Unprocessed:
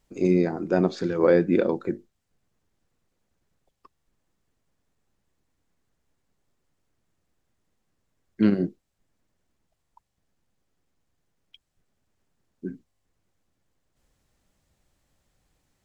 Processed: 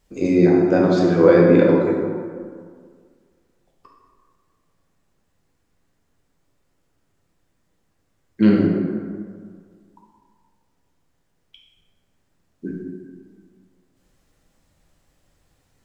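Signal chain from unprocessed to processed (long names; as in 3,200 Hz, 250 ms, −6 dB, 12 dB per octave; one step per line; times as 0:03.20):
dense smooth reverb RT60 1.9 s, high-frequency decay 0.5×, DRR −2.5 dB
level +3 dB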